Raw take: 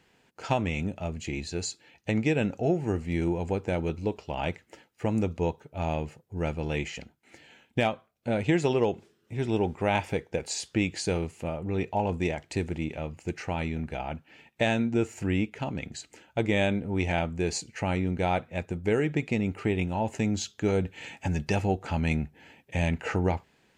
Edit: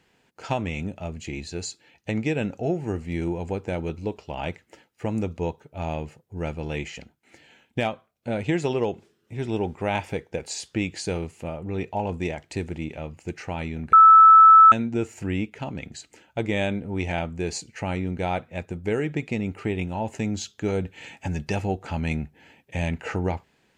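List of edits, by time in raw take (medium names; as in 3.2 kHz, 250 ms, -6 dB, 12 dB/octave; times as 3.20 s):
13.93–14.72 s: bleep 1.31 kHz -7.5 dBFS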